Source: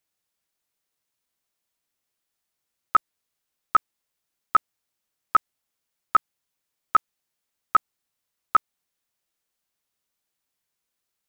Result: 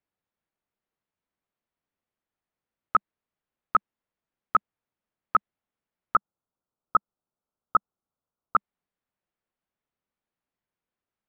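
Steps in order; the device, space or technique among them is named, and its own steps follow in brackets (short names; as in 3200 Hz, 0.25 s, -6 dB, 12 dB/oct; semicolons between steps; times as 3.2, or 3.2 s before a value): phone in a pocket (LPF 3100 Hz 12 dB/oct; bell 200 Hz +3.5 dB 0.43 oct; high shelf 2200 Hz -11 dB); 6.16–8.56 elliptic low-pass 1400 Hz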